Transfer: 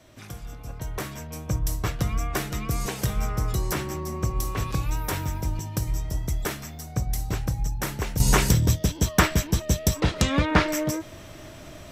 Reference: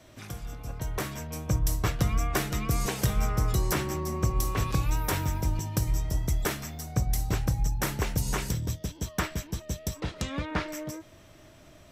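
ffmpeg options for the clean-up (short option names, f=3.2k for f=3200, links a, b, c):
-af "asetnsamples=n=441:p=0,asendcmd='8.2 volume volume -10.5dB',volume=0dB"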